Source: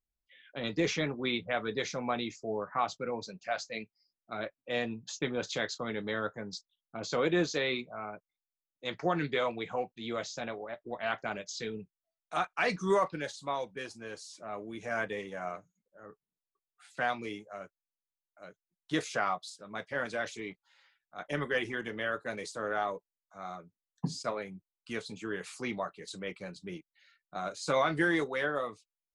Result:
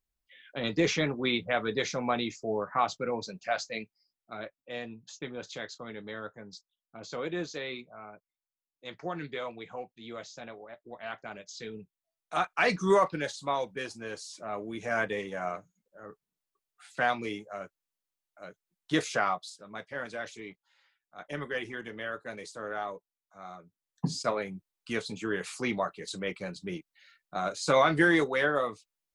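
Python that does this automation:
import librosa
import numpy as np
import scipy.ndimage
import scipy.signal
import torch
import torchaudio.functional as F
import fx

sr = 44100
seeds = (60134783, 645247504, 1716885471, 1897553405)

y = fx.gain(x, sr, db=fx.line((3.63, 3.5), (4.79, -6.0), (11.31, -6.0), (12.57, 4.0), (19.11, 4.0), (19.92, -3.0), (23.58, -3.0), (24.18, 5.0)))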